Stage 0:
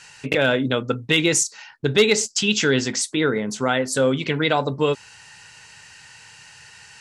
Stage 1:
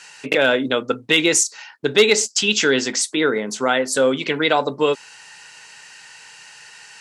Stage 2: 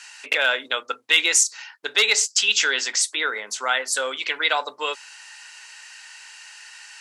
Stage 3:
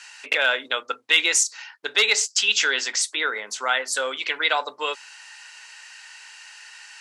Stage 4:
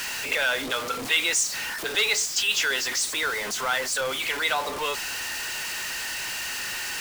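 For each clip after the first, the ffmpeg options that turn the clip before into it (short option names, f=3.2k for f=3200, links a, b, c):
-af "highpass=270,volume=3dB"
-af "highpass=1k"
-af "highshelf=f=8.2k:g=-6"
-af "aeval=exprs='val(0)+0.5*0.1*sgn(val(0))':c=same,volume=-6.5dB"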